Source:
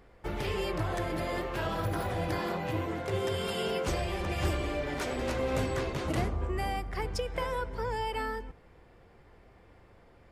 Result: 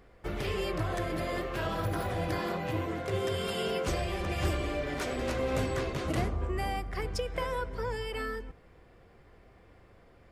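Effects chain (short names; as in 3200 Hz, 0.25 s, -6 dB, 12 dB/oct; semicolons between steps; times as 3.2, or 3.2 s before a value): notch 880 Hz, Q 12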